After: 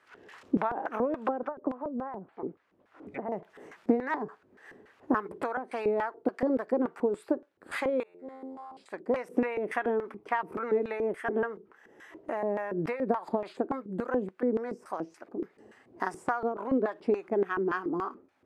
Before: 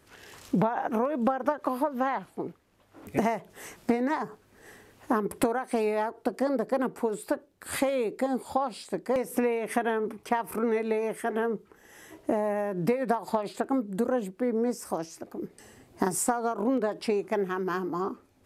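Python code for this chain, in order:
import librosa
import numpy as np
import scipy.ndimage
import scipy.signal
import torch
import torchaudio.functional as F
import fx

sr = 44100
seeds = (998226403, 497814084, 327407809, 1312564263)

y = fx.env_lowpass_down(x, sr, base_hz=560.0, full_db=-26.0, at=(1.39, 3.32))
y = fx.comb_fb(y, sr, f0_hz=88.0, decay_s=1.6, harmonics='all', damping=0.0, mix_pct=100, at=(8.03, 8.77))
y = fx.filter_lfo_bandpass(y, sr, shape='square', hz=3.5, low_hz=340.0, high_hz=1500.0, q=1.2)
y = F.gain(torch.from_numpy(y), 3.0).numpy()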